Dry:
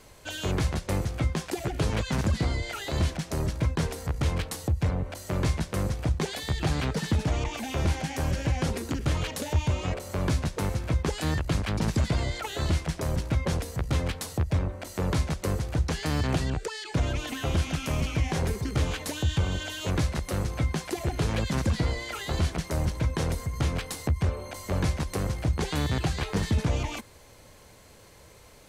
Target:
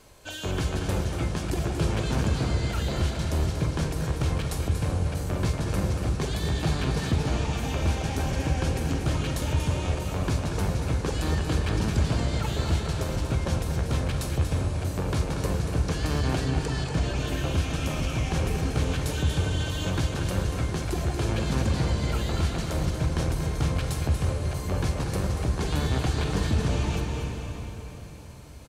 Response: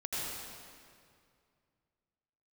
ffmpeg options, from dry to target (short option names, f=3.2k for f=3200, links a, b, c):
-filter_complex "[0:a]bandreject=f=2k:w=12,aecho=1:1:236:0.355,asplit=2[a][b];[1:a]atrim=start_sample=2205,asetrate=22491,aresample=44100,adelay=46[c];[b][c]afir=irnorm=-1:irlink=0,volume=-12dB[d];[a][d]amix=inputs=2:normalize=0,volume=-1.5dB"